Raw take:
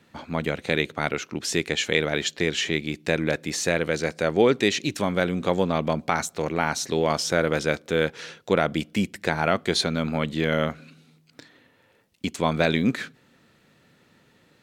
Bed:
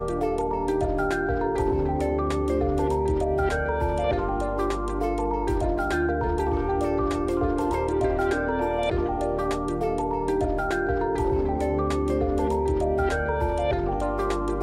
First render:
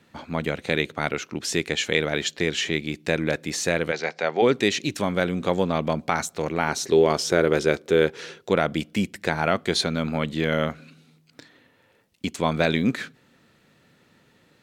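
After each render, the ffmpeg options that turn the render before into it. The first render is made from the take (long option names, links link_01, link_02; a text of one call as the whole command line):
ffmpeg -i in.wav -filter_complex "[0:a]asplit=3[link_01][link_02][link_03];[link_01]afade=type=out:start_time=3.91:duration=0.02[link_04];[link_02]highpass=frequency=190:width=0.5412,highpass=frequency=190:width=1.3066,equalizer=frequency=210:width_type=q:width=4:gain=-10,equalizer=frequency=310:width_type=q:width=4:gain=-9,equalizer=frequency=510:width_type=q:width=4:gain=-3,equalizer=frequency=800:width_type=q:width=4:gain=7,equalizer=frequency=2100:width_type=q:width=4:gain=4,lowpass=frequency=5700:width=0.5412,lowpass=frequency=5700:width=1.3066,afade=type=in:start_time=3.91:duration=0.02,afade=type=out:start_time=4.41:duration=0.02[link_05];[link_03]afade=type=in:start_time=4.41:duration=0.02[link_06];[link_04][link_05][link_06]amix=inputs=3:normalize=0,asettb=1/sr,asplit=3[link_07][link_08][link_09];[link_07]atrim=end=6.684[link_10];[link_08]atrim=start=6.68:end=8.5,asetpts=PTS-STARTPTS,afade=type=in:duration=0.004:curve=qsin,afade=type=out:start_time=1.816:duration=0.004:curve=qsin,equalizer=frequency=390:width=3.5:gain=10[link_11];[link_09]atrim=start=8.496[link_12];[link_10][link_11]acrossfade=duration=0.004:curve1=hsin:curve2=qsin[link_13];[link_13][link_12]acrossfade=duration=0.004:curve1=qsin:curve2=hsin" out.wav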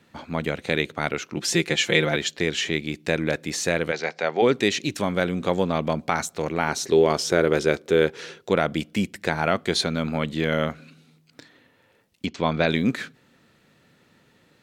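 ffmpeg -i in.wav -filter_complex "[0:a]asettb=1/sr,asplit=3[link_01][link_02][link_03];[link_01]atrim=end=1.364[link_04];[link_02]atrim=start=1.36:end=2.16,asetpts=PTS-STARTPTS,afade=type=in:duration=0.004:curve=qsin,afade=type=out:start_time=0.796:duration=0.004:curve=qsin,aecho=1:1:5.8:0.96,atrim=end_sample=35280[link_05];[link_03]atrim=start=2.156[link_06];[link_04][link_05]acrossfade=duration=0.004:curve1=hsin:curve2=qsin[link_07];[link_07][link_06]acrossfade=duration=0.004:curve1=qsin:curve2=hsin,asettb=1/sr,asplit=3[link_08][link_09][link_10];[link_08]atrim=end=12.264[link_11];[link_09]atrim=start=12.26:end=12.69,asetpts=PTS-STARTPTS,afade=type=in:duration=0.004:curve=qsin,afade=type=out:start_time=0.426:duration=0.004:curve=qsin,lowpass=frequency=5400:width=0.5412,lowpass=frequency=5400:width=1.3066[link_12];[link_10]atrim=start=12.686[link_13];[link_11][link_12]acrossfade=duration=0.004:curve1=hsin:curve2=qsin[link_14];[link_14][link_13]acrossfade=duration=0.004:curve1=qsin:curve2=hsin" out.wav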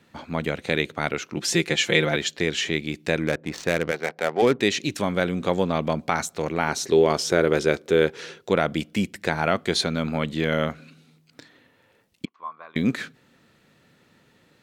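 ffmpeg -i in.wav -filter_complex "[0:a]asettb=1/sr,asplit=3[link_01][link_02][link_03];[link_01]atrim=end=3.274[link_04];[link_02]atrim=start=3.27:end=4.61,asetpts=PTS-STARTPTS,afade=type=in:duration=0.004:curve=qsin,afade=type=out:start_time=1.336:duration=0.004:curve=qsin,adynamicsmooth=sensitivity=3.5:basefreq=890[link_05];[link_03]atrim=start=4.606[link_06];[link_04][link_05]acrossfade=duration=0.004:curve1=hsin:curve2=qsin[link_07];[link_07][link_06]acrossfade=duration=0.004:curve1=qsin:curve2=hsin,asettb=1/sr,asplit=3[link_08][link_09][link_10];[link_08]atrim=end=12.254[link_11];[link_09]atrim=start=12.25:end=12.76,asetpts=PTS-STARTPTS,afade=type=in:duration=0.004:curve=qsin,afade=type=out:start_time=0.506:duration=0.004:curve=qsin,bandpass=frequency=1100:width_type=q:width=13[link_12];[link_10]atrim=start=12.756[link_13];[link_11][link_12]acrossfade=duration=0.004:curve1=hsin:curve2=qsin[link_14];[link_14][link_13]acrossfade=duration=0.004:curve1=qsin:curve2=hsin" out.wav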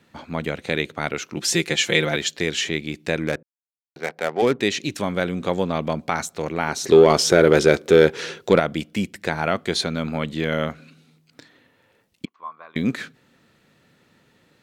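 ffmpeg -i in.wav -filter_complex "[0:a]asettb=1/sr,asplit=3[link_01][link_02][link_03];[link_01]atrim=end=1.154[link_04];[link_02]atrim=start=1.15:end=2.69,asetpts=PTS-STARTPTS,afade=type=in:duration=0.004:curve=qsin,afade=type=out:start_time=1.536:duration=0.004:curve=qsin,highshelf=frequency=4200:gain=5[link_05];[link_03]atrim=start=2.686[link_06];[link_04][link_05]acrossfade=duration=0.004:curve1=hsin:curve2=qsin[link_07];[link_07][link_06]acrossfade=duration=0.004:curve1=qsin:curve2=hsin,asettb=1/sr,asplit=3[link_08][link_09][link_10];[link_08]atrim=end=6.844[link_11];[link_09]atrim=start=6.84:end=8.6,asetpts=PTS-STARTPTS,afade=type=in:duration=0.004:curve=qsin,afade=type=out:start_time=1.756:duration=0.004:curve=qsin,acontrast=83[link_12];[link_10]atrim=start=8.596[link_13];[link_11][link_12]acrossfade=duration=0.004:curve1=hsin:curve2=qsin[link_14];[link_14][link_13]acrossfade=duration=0.004:curve1=qsin:curve2=hsin,asplit=3[link_15][link_16][link_17];[link_15]atrim=end=3.43,asetpts=PTS-STARTPTS,afade=type=out:start_time=3.426:duration=0.004:curve=hsin[link_18];[link_16]atrim=start=3.43:end=3.96,asetpts=PTS-STARTPTS,volume=0[link_19];[link_17]atrim=start=3.96,asetpts=PTS-STARTPTS,afade=type=in:duration=0.004:curve=hsin[link_20];[link_18][link_19][link_20]concat=n=3:v=0:a=1" out.wav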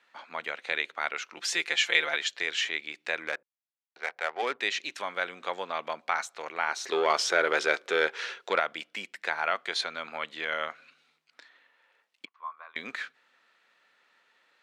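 ffmpeg -i in.wav -af "highpass=1100,aemphasis=mode=reproduction:type=75fm" out.wav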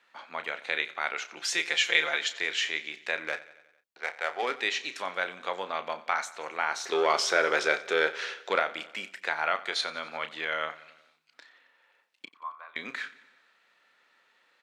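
ffmpeg -i in.wav -filter_complex "[0:a]asplit=2[link_01][link_02];[link_02]adelay=32,volume=-11dB[link_03];[link_01][link_03]amix=inputs=2:normalize=0,aecho=1:1:90|180|270|360|450:0.119|0.0713|0.0428|0.0257|0.0154" out.wav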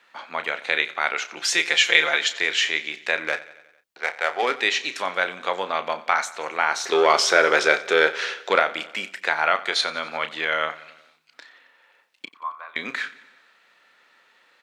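ffmpeg -i in.wav -af "volume=7.5dB,alimiter=limit=-2dB:level=0:latency=1" out.wav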